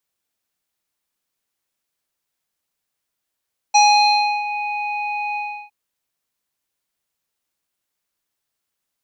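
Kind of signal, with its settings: synth note square G#5 24 dB/oct, low-pass 2900 Hz, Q 3, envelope 1 oct, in 0.80 s, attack 14 ms, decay 0.68 s, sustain -14 dB, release 0.34 s, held 1.62 s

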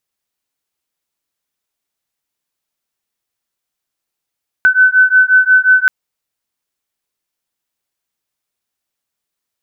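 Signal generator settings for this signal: beating tones 1510 Hz, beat 5.6 Hz, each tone -9.5 dBFS 1.23 s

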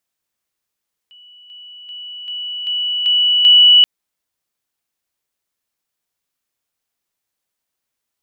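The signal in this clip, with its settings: level ladder 2950 Hz -41 dBFS, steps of 6 dB, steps 7, 0.39 s 0.00 s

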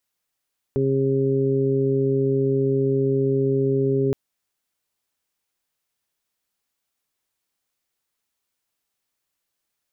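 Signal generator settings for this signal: steady additive tone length 3.37 s, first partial 135 Hz, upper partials -2/3/-13.5 dB, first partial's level -23 dB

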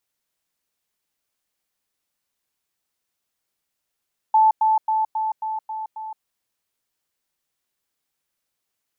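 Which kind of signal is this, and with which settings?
level ladder 874 Hz -11.5 dBFS, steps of -3 dB, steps 7, 0.17 s 0.10 s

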